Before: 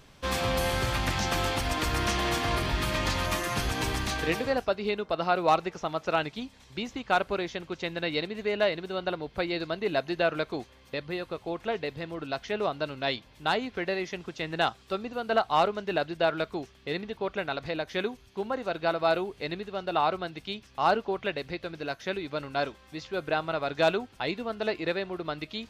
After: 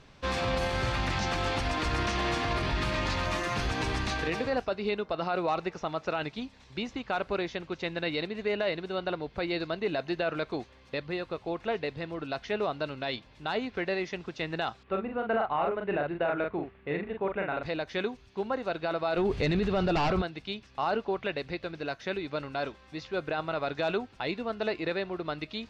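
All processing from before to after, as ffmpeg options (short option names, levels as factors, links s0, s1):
-filter_complex "[0:a]asettb=1/sr,asplit=3[s0][s1][s2];[s0]atrim=end=14.834[s3];[s1]atrim=start=14.83:end=17.63,asetpts=PTS-STARTPTS,afade=t=in:d=0.004:c=qsin,afade=t=out:st=2.796:d=0.004:c=qsin,lowpass=f=2500:w=0.5412,lowpass=f=2500:w=1.3066,asplit=2[s4][s5];[s5]adelay=41,volume=0.596[s6];[s4][s6]amix=inputs=2:normalize=0,atrim=end_sample=123480[s7];[s2]atrim=start=17.626[s8];[s3][s7]acrossfade=d=0.004:c1=hsin:c2=qsin[s9];[s9][s8]acrossfade=d=0.004:c1=qsin:c2=hsin,asettb=1/sr,asplit=3[s10][s11][s12];[s10]atrim=end=19.174[s13];[s11]atrim=start=19.17:end=20.22,asetpts=PTS-STARTPTS,afade=t=in:d=0.004:c=qsin,afade=t=out:st=1.046:d=0.004:c=qsin,aeval=exprs='0.211*sin(PI/2*2.82*val(0)/0.211)':c=same,lowshelf=f=160:g=12[s14];[s12]atrim=start=20.216[s15];[s13][s14]acrossfade=d=0.004:c1=hsin:c2=qsin[s16];[s16][s15]acrossfade=d=0.004:c1=qsin:c2=hsin,alimiter=limit=0.1:level=0:latency=1:release=15,lowpass=5300,bandreject=f=3200:w=20"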